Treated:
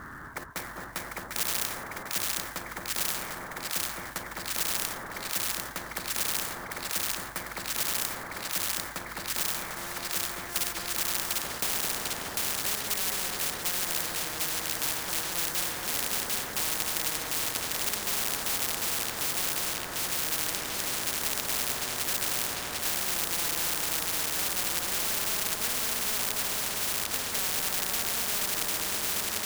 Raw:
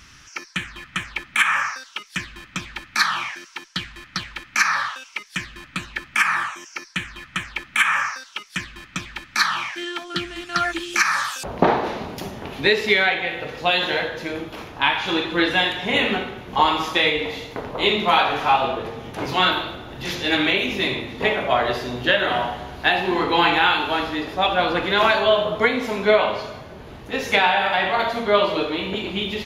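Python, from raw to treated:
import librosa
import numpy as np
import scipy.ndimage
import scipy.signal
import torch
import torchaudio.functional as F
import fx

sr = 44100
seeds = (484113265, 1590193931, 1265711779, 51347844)

p1 = scipy.signal.sosfilt(scipy.signal.ellip(4, 1.0, 40, 1700.0, 'lowpass', fs=sr, output='sos'), x)
p2 = fx.low_shelf(p1, sr, hz=88.0, db=-9.0)
p3 = (np.mod(10.0 ** (16.5 / 20.0) * p2 + 1.0, 2.0) - 1.0) / 10.0 ** (16.5 / 20.0)
p4 = p2 + (p3 * librosa.db_to_amplitude(-4.0))
p5 = fx.quant_float(p4, sr, bits=2)
p6 = fx.echo_split(p5, sr, split_hz=1200.0, low_ms=219, high_ms=748, feedback_pct=52, wet_db=-4.5)
p7 = fx.spectral_comp(p6, sr, ratio=10.0)
y = p7 * librosa.db_to_amplitude(-6.5)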